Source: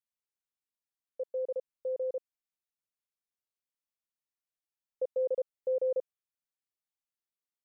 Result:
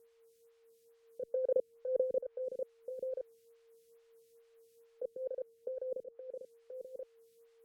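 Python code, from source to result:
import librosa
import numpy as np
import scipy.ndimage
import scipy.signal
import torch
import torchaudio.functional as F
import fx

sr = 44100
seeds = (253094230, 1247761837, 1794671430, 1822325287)

y = fx.env_lowpass_down(x, sr, base_hz=480.0, full_db=-33.0)
y = fx.over_compress(y, sr, threshold_db=-41.0, ratio=-0.5)
y = y + 10.0 ** (-73.0 / 20.0) * np.sin(2.0 * np.pi * 460.0 * np.arange(len(y)) / sr)
y = y + 10.0 ** (-6.5 / 20.0) * np.pad(y, (int(1030 * sr / 1000.0), 0))[:len(y)]
y = fx.stagger_phaser(y, sr, hz=2.3)
y = y * 10.0 ** (11.5 / 20.0)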